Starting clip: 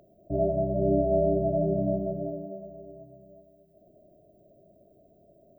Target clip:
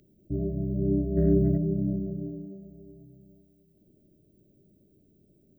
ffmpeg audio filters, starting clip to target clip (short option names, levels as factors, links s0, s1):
-filter_complex "[0:a]asplit=3[s0][s1][s2];[s0]afade=t=out:st=1.16:d=0.02[s3];[s1]acontrast=66,afade=t=in:st=1.16:d=0.02,afade=t=out:st=1.56:d=0.02[s4];[s2]afade=t=in:st=1.56:d=0.02[s5];[s3][s4][s5]amix=inputs=3:normalize=0,asuperstop=centerf=820:order=4:qfactor=0.5,volume=1.26"